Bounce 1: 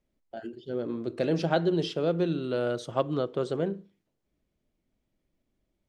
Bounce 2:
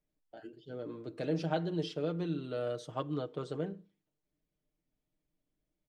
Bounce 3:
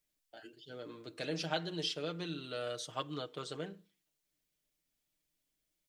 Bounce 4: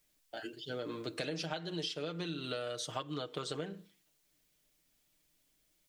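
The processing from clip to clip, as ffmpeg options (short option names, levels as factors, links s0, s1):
-af "aecho=1:1:6.6:0.61,volume=0.355"
-af "tiltshelf=f=1300:g=-9,volume=1.19"
-af "acompressor=threshold=0.00631:ratio=16,volume=2.99"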